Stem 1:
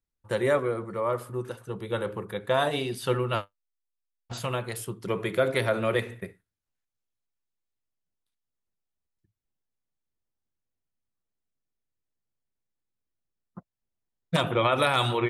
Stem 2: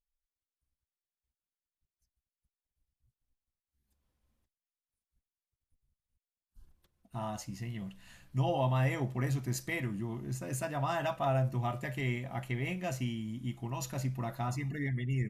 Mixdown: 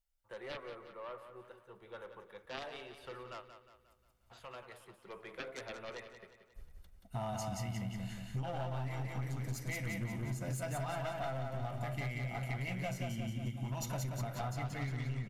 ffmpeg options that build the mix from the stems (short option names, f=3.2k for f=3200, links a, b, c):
-filter_complex "[0:a]aeval=exprs='if(lt(val(0),0),0.708*val(0),val(0))':c=same,acrossover=split=460 3400:gain=0.224 1 0.224[a][b][c];[a][b][c]amix=inputs=3:normalize=0,aeval=exprs='0.211*(cos(1*acos(clip(val(0)/0.211,-1,1)))-cos(1*PI/2))+0.106*(cos(3*acos(clip(val(0)/0.211,-1,1)))-cos(3*PI/2))':c=same,volume=-7dB,asplit=2[d][e];[e]volume=-10dB[f];[1:a]aecho=1:1:1.4:0.48,aeval=exprs='clip(val(0),-1,0.0237)':c=same,volume=2dB,asplit=3[g][h][i];[h]volume=-3.5dB[j];[i]apad=whole_len=674383[k];[d][k]sidechaincompress=threshold=-40dB:ratio=8:attack=16:release=136[l];[f][j]amix=inputs=2:normalize=0,aecho=0:1:179|358|537|716|895|1074|1253:1|0.47|0.221|0.104|0.0488|0.0229|0.0108[m];[l][g][m]amix=inputs=3:normalize=0,acompressor=threshold=-35dB:ratio=10"